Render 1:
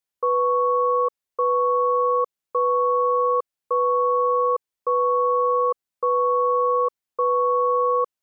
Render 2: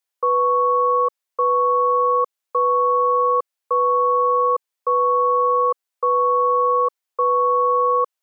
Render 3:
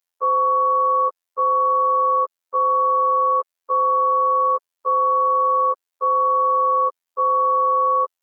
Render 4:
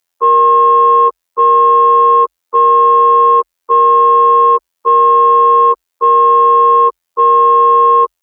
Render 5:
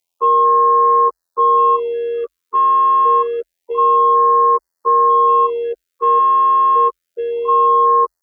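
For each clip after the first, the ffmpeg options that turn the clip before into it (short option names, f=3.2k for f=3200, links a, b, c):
-af "highpass=500,volume=4dB"
-af "afftfilt=real='hypot(re,im)*cos(PI*b)':imag='0':win_size=2048:overlap=0.75,volume=2dB"
-af "acontrast=37,afreqshift=-47,volume=5dB"
-af "afftfilt=real='re*(1-between(b*sr/1024,610*pow(3000/610,0.5+0.5*sin(2*PI*0.27*pts/sr))/1.41,610*pow(3000/610,0.5+0.5*sin(2*PI*0.27*pts/sr))*1.41))':imag='im*(1-between(b*sr/1024,610*pow(3000/610,0.5+0.5*sin(2*PI*0.27*pts/sr))/1.41,610*pow(3000/610,0.5+0.5*sin(2*PI*0.27*pts/sr))*1.41))':win_size=1024:overlap=0.75,volume=-4dB"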